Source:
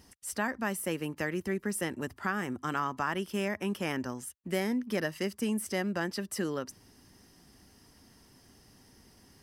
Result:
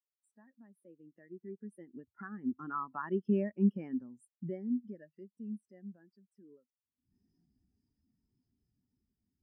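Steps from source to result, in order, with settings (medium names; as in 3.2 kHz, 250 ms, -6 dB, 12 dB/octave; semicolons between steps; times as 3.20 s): recorder AGC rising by 48 dB/s; Doppler pass-by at 3.21 s, 6 m/s, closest 5.1 m; spectral contrast expander 2.5:1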